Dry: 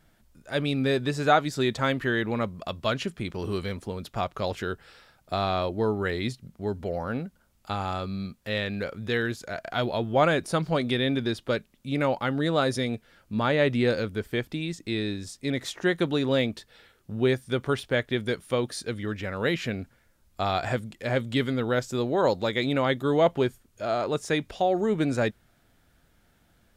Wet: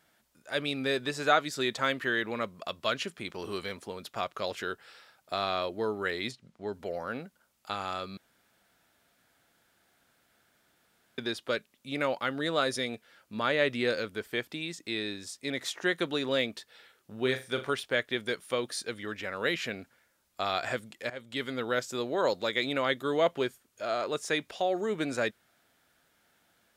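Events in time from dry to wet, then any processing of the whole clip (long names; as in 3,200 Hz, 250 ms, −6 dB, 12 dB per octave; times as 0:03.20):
0:06.31–0:06.73: high-frequency loss of the air 63 metres
0:08.17–0:11.18: fill with room tone
0:17.19–0:17.71: flutter between parallel walls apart 6.8 metres, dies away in 0.27 s
0:21.10–0:21.60: fade in, from −17 dB
whole clip: high-pass filter 610 Hz 6 dB per octave; dynamic equaliser 830 Hz, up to −6 dB, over −44 dBFS, Q 3.4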